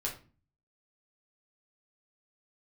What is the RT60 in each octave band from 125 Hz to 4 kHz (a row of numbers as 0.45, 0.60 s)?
0.70, 0.55, 0.40, 0.35, 0.30, 0.30 s